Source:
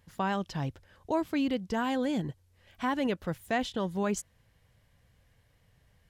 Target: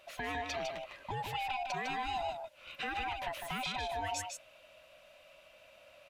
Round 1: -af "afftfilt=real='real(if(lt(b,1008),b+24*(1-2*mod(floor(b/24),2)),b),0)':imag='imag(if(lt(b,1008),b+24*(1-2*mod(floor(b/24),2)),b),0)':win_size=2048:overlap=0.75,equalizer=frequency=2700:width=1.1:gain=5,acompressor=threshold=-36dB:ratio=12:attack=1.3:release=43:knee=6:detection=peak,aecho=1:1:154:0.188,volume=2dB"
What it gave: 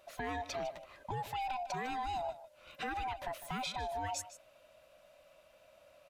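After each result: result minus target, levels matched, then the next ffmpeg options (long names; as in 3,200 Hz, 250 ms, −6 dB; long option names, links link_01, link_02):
echo-to-direct −9.5 dB; 2,000 Hz band −3.5 dB
-af "afftfilt=real='real(if(lt(b,1008),b+24*(1-2*mod(floor(b/24),2)),b),0)':imag='imag(if(lt(b,1008),b+24*(1-2*mod(floor(b/24),2)),b),0)':win_size=2048:overlap=0.75,equalizer=frequency=2700:width=1.1:gain=5,acompressor=threshold=-36dB:ratio=12:attack=1.3:release=43:knee=6:detection=peak,aecho=1:1:154:0.562,volume=2dB"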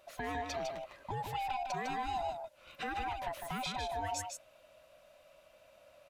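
2,000 Hz band −3.0 dB
-af "afftfilt=real='real(if(lt(b,1008),b+24*(1-2*mod(floor(b/24),2)),b),0)':imag='imag(if(lt(b,1008),b+24*(1-2*mod(floor(b/24),2)),b),0)':win_size=2048:overlap=0.75,equalizer=frequency=2700:width=1.1:gain=14,acompressor=threshold=-36dB:ratio=12:attack=1.3:release=43:knee=6:detection=peak,aecho=1:1:154:0.562,volume=2dB"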